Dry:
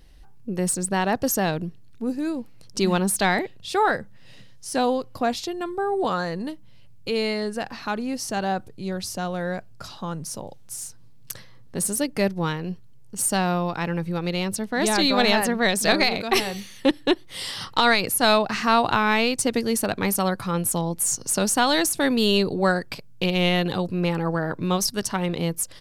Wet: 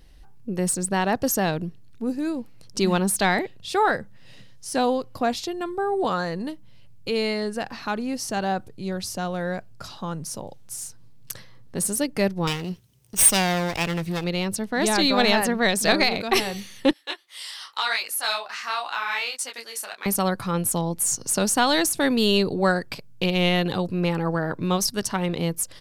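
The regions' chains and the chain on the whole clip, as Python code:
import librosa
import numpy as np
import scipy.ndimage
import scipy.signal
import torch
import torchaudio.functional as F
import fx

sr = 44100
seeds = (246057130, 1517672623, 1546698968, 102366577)

y = fx.chain(x, sr, fx.lower_of_two(delay_ms=0.34),
    fx.high_shelf(hz=2100.0, db=10.0), at=(12.47, 14.24))
y = fx.chain(y, sr, fx.highpass(hz=1100.0, slope=12),
    fx.detune_double(cents=30), at=(16.93, 20.06))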